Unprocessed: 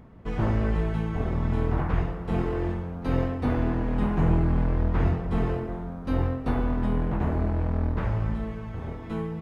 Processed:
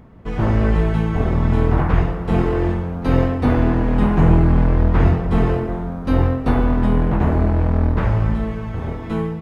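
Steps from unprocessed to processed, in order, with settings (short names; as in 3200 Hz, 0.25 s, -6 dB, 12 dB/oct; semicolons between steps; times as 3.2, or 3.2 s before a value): AGC gain up to 4.5 dB; gain +4.5 dB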